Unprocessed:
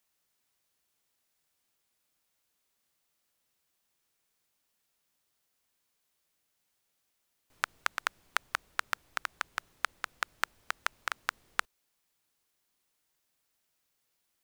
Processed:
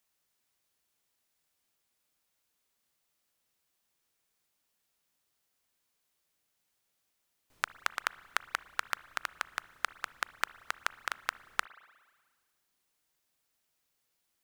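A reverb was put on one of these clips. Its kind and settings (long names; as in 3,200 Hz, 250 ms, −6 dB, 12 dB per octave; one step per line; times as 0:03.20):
spring reverb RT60 1.5 s, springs 35/59 ms, chirp 25 ms, DRR 18 dB
level −1 dB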